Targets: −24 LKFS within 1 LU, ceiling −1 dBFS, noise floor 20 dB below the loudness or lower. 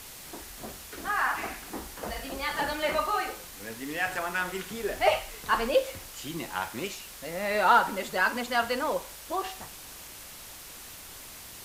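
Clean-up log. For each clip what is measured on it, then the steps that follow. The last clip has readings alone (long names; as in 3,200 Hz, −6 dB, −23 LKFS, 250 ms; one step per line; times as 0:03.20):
background noise floor −45 dBFS; target noise floor −50 dBFS; integrated loudness −29.5 LKFS; sample peak −10.0 dBFS; target loudness −24.0 LKFS
→ broadband denoise 6 dB, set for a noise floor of −45 dBFS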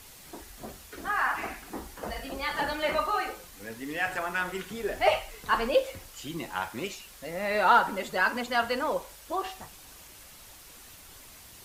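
background noise floor −50 dBFS; integrated loudness −29.0 LKFS; sample peak −10.0 dBFS; target loudness −24.0 LKFS
→ level +5 dB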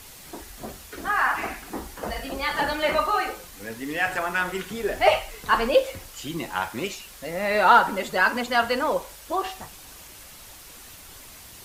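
integrated loudness −24.0 LKFS; sample peak −5.0 dBFS; background noise floor −45 dBFS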